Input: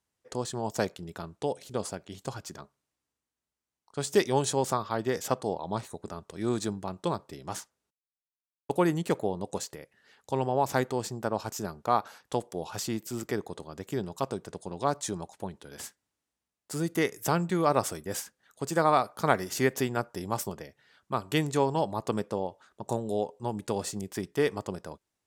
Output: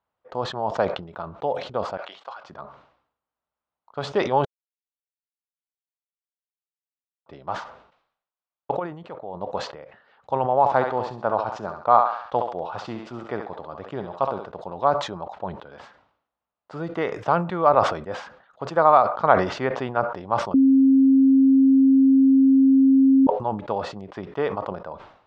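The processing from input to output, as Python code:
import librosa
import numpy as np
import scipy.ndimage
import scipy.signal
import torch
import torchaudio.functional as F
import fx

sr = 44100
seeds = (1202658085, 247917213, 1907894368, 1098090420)

y = fx.bessel_highpass(x, sr, hz=1200.0, order=2, at=(1.97, 2.44))
y = fx.level_steps(y, sr, step_db=19, at=(8.78, 9.34), fade=0.02)
y = fx.echo_thinned(y, sr, ms=68, feedback_pct=36, hz=420.0, wet_db=-7, at=(10.59, 14.5))
y = fx.edit(y, sr, fx.silence(start_s=4.45, length_s=2.81),
    fx.bleep(start_s=20.54, length_s=2.73, hz=268.0, db=-10.0), tone=tone)
y = scipy.signal.sosfilt(scipy.signal.butter(4, 3600.0, 'lowpass', fs=sr, output='sos'), y)
y = fx.band_shelf(y, sr, hz=850.0, db=10.5, octaves=1.7)
y = fx.sustainer(y, sr, db_per_s=91.0)
y = y * librosa.db_to_amplitude(-2.0)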